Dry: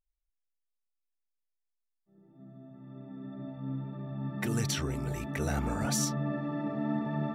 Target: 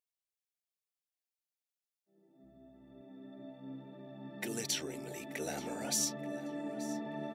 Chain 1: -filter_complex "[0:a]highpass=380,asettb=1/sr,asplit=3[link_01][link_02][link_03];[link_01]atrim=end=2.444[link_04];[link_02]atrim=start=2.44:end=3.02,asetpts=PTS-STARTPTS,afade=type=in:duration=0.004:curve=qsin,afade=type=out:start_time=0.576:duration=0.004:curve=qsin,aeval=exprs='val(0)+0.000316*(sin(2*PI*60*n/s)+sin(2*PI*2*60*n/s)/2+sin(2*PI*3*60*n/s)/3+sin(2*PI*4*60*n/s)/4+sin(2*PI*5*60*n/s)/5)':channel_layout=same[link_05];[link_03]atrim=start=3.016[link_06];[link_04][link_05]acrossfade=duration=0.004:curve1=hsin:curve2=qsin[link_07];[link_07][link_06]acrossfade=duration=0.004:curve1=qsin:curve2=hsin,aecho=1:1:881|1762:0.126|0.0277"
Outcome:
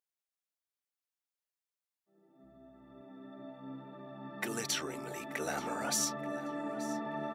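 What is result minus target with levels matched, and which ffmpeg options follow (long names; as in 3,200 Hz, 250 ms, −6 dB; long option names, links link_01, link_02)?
1,000 Hz band +6.0 dB
-filter_complex "[0:a]highpass=380,equalizer=frequency=1200:width=1.7:gain=-14.5,asettb=1/sr,asplit=3[link_01][link_02][link_03];[link_01]atrim=end=2.444[link_04];[link_02]atrim=start=2.44:end=3.02,asetpts=PTS-STARTPTS,afade=type=in:duration=0.004:curve=qsin,afade=type=out:start_time=0.576:duration=0.004:curve=qsin,aeval=exprs='val(0)+0.000316*(sin(2*PI*60*n/s)+sin(2*PI*2*60*n/s)/2+sin(2*PI*3*60*n/s)/3+sin(2*PI*4*60*n/s)/4+sin(2*PI*5*60*n/s)/5)':channel_layout=same[link_05];[link_03]atrim=start=3.016[link_06];[link_04][link_05]acrossfade=duration=0.004:curve1=hsin:curve2=qsin[link_07];[link_07][link_06]acrossfade=duration=0.004:curve1=qsin:curve2=hsin,aecho=1:1:881|1762:0.126|0.0277"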